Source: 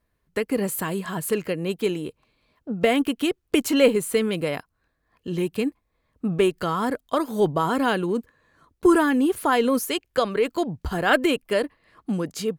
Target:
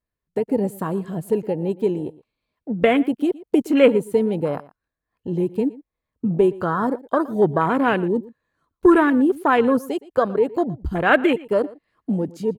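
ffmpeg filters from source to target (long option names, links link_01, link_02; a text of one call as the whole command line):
ffmpeg -i in.wav -filter_complex "[0:a]afwtdn=0.0447,asplit=2[link_01][link_02];[link_02]adelay=116.6,volume=-20dB,highshelf=frequency=4000:gain=-2.62[link_03];[link_01][link_03]amix=inputs=2:normalize=0,volume=3.5dB" out.wav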